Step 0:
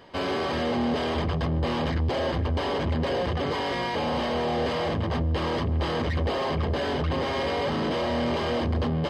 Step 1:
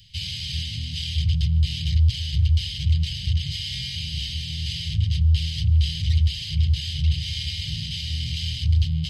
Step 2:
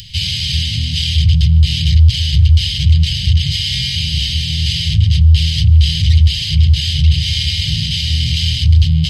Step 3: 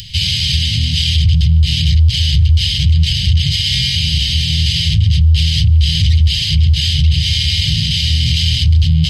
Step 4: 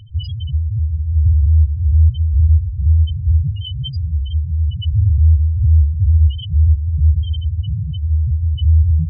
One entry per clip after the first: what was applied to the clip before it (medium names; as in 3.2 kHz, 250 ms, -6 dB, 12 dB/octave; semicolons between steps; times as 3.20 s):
inverse Chebyshev band-stop 280–1400 Hz, stop band 50 dB; trim +9 dB
in parallel at +0.5 dB: peak limiter -18 dBFS, peak gain reduction 7.5 dB; on the sum: upward compressor, threshold -35 dBFS; trim +6 dB
loudness maximiser +6.5 dB; trim -3.5 dB
loudest bins only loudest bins 2